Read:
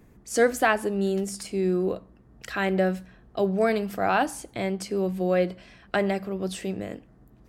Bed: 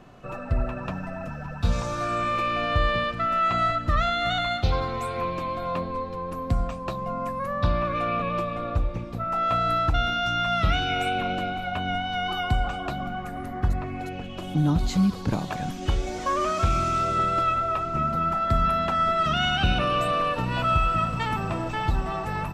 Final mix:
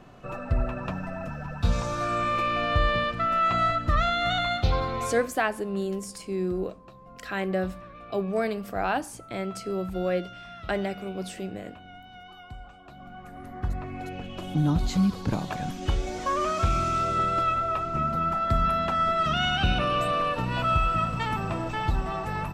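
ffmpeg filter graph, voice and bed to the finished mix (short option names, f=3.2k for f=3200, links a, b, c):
-filter_complex "[0:a]adelay=4750,volume=-4dB[a];[1:a]volume=17dB,afade=t=out:st=5.05:d=0.23:silence=0.11885,afade=t=in:st=12.86:d=1.43:silence=0.133352[b];[a][b]amix=inputs=2:normalize=0"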